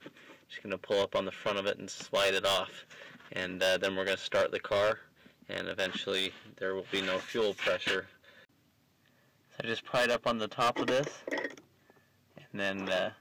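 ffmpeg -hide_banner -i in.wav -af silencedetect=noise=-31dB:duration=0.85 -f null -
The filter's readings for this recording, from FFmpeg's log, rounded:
silence_start: 8.00
silence_end: 9.60 | silence_duration: 1.60
silence_start: 11.46
silence_end: 12.56 | silence_duration: 1.09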